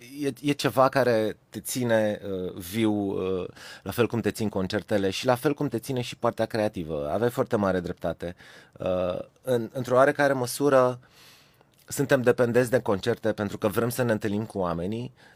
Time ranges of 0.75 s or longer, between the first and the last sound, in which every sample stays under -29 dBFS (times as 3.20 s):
10.93–11.91 s